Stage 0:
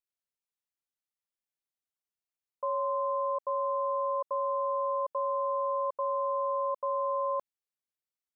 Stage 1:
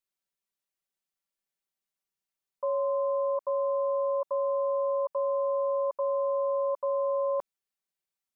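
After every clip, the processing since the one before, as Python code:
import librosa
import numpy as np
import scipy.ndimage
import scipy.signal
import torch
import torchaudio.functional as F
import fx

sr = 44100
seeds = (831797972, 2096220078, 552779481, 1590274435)

y = x + 0.91 * np.pad(x, (int(5.2 * sr / 1000.0), 0))[:len(x)]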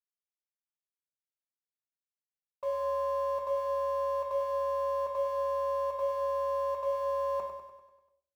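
y = fx.law_mismatch(x, sr, coded='A')
y = fx.echo_feedback(y, sr, ms=98, feedback_pct=56, wet_db=-7.5)
y = fx.room_shoebox(y, sr, seeds[0], volume_m3=450.0, walls='furnished', distance_m=1.6)
y = y * librosa.db_to_amplitude(-2.5)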